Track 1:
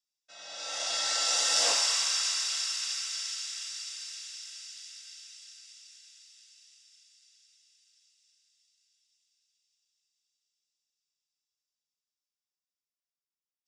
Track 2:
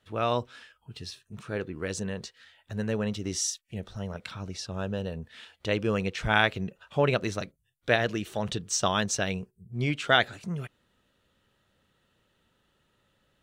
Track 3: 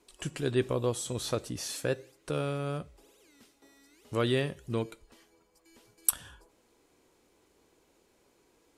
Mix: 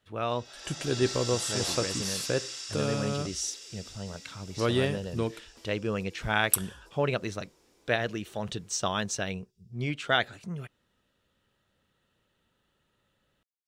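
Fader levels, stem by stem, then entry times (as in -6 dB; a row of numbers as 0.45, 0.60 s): -8.0, -3.5, +1.5 dB; 0.00, 0.00, 0.45 s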